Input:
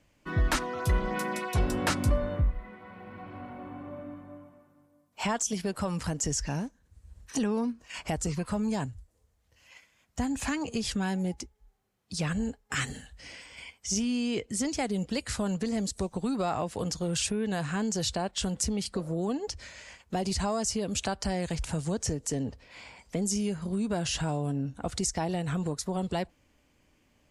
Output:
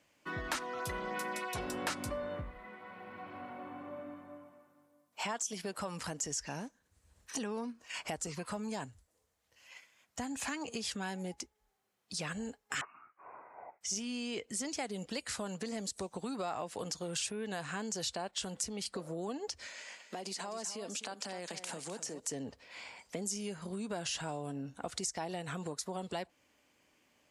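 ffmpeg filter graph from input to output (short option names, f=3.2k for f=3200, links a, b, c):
-filter_complex "[0:a]asettb=1/sr,asplit=3[a][b][c];[a]atrim=end=12.814[d];[b]atrim=start=12.81:end=13.81,asetpts=PTS-STARTPTS,afade=t=in:d=0.004:c=qsin,afade=t=out:st=0.996:d=0.004:c=qsin,highpass=1.4k,lowpass=f=2.6k:t=q:w=0.5098,lowpass=f=2.6k:t=q:w=0.6013,lowpass=f=2.6k:t=q:w=0.9,lowpass=f=2.6k:t=q:w=2.563,afreqshift=-3000[e];[c]atrim=start=13.806[f];[d][e]acrossfade=d=0.004:c1=hsin:c2=qsin[g];[g][f]acrossfade=d=0.004:c1=qsin:c2=hsin,asettb=1/sr,asplit=3[h][i][j];[h]atrim=end=19.674[k];[i]atrim=start=19.67:end=22.2,asetpts=PTS-STARTPTS,afade=t=in:d=0.004:c=qsin,afade=t=out:st=2.526:d=0.004:c=qsin,highpass=f=190:w=0.5412,highpass=f=190:w=1.3066,acompressor=threshold=-33dB:ratio=5:attack=3.2:release=140:knee=1:detection=peak,aecho=1:1:256:0.282,atrim=end_sample=111573[l];[j]atrim=start=22.196[m];[k][l]acrossfade=d=0.004:c1=hsin:c2=qsin[n];[n][m]acrossfade=d=0.004:c1=qsin:c2=hsin,highpass=f=470:p=1,acompressor=threshold=-38dB:ratio=2"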